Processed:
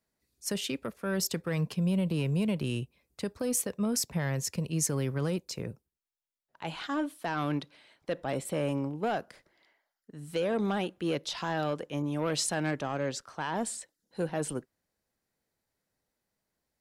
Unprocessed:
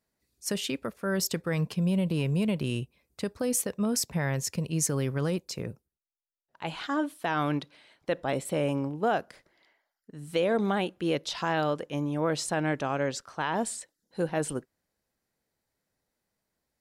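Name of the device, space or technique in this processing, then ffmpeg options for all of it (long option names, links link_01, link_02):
one-band saturation: -filter_complex "[0:a]acrossover=split=260|3800[link_01][link_02][link_03];[link_02]asoftclip=type=tanh:threshold=-23.5dB[link_04];[link_01][link_04][link_03]amix=inputs=3:normalize=0,asettb=1/sr,asplit=3[link_05][link_06][link_07];[link_05]atrim=end=12.024[link_08];[link_06]atrim=start=12.02:end=12.71,asetpts=PTS-STARTPTS,afade=type=in:duration=0.004:curve=qsin,afade=type=out:start_time=0.686:duration=0.004:curve=qsin,adynamicequalizer=threshold=0.00631:dfrequency=1700:dqfactor=0.7:tfrequency=1700:tqfactor=0.7:attack=5:release=100:ratio=0.375:range=2.5:mode=boostabove:tftype=highshelf[link_09];[link_07]atrim=start=12.706[link_10];[link_08][link_09]acrossfade=duration=0.004:curve1=hsin:curve2=qsin[link_11];[link_11][link_10]acrossfade=duration=0.004:curve1=qsin:curve2=hsin,volume=-1.5dB"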